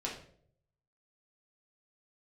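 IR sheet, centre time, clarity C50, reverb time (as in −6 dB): 30 ms, 6.0 dB, 0.60 s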